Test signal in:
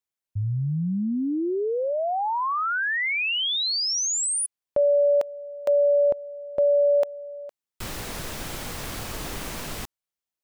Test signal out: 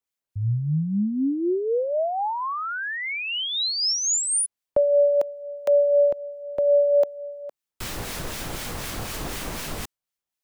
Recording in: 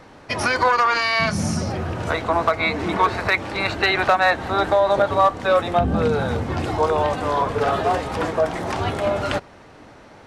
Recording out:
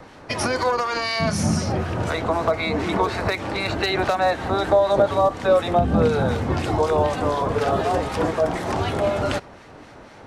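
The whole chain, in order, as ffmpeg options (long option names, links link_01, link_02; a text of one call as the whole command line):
ffmpeg -i in.wav -filter_complex "[0:a]acrossover=split=1400[link_01][link_02];[link_01]aeval=exprs='val(0)*(1-0.5/2+0.5/2*cos(2*PI*4*n/s))':channel_layout=same[link_03];[link_02]aeval=exprs='val(0)*(1-0.5/2-0.5/2*cos(2*PI*4*n/s))':channel_layout=same[link_04];[link_03][link_04]amix=inputs=2:normalize=0,acrossover=split=340|720|4300[link_05][link_06][link_07][link_08];[link_07]acompressor=threshold=-37dB:ratio=6:attack=55:release=26:knee=6:detection=rms[link_09];[link_05][link_06][link_09][link_08]amix=inputs=4:normalize=0,volume=4dB" out.wav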